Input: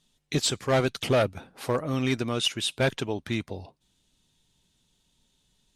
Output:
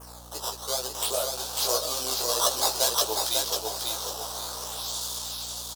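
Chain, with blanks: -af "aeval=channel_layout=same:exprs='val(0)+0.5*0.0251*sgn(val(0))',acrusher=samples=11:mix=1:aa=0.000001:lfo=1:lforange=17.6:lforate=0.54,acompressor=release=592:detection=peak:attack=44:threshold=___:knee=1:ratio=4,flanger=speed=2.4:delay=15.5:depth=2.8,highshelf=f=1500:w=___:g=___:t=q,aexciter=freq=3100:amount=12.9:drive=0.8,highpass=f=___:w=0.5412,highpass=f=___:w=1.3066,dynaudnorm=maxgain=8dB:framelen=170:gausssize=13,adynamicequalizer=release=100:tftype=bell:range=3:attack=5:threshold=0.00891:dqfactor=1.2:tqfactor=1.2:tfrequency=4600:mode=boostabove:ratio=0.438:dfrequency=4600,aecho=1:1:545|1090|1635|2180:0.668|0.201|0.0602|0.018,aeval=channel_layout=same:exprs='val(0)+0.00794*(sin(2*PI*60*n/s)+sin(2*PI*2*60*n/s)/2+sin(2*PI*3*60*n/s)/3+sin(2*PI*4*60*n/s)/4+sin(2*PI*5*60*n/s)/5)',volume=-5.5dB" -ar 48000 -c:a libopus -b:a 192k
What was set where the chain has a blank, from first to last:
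-24dB, 1.5, -10, 470, 470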